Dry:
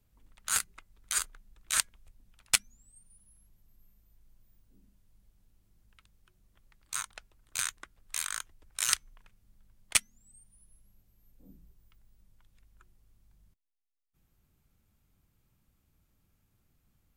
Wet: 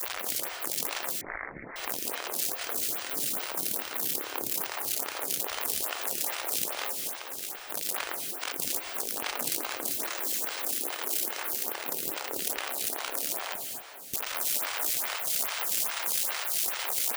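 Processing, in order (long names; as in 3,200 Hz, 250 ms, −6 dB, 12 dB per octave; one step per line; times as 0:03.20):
converter with a step at zero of −22 dBFS
gate on every frequency bin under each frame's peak −25 dB weak
0:06.95–0:07.66: downward compressor 2.5 to 1, threshold −43 dBFS, peak gain reduction 8 dB
0:09.98–0:11.50: high-pass filter 240 Hz 24 dB per octave
feedback delay with all-pass diffusion 457 ms, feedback 62%, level −13 dB
reverb whose tail is shaped and stops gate 280 ms rising, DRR 3 dB
0:01.21–0:01.76: voice inversion scrambler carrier 2,500 Hz
phaser with staggered stages 2.4 Hz
level +7.5 dB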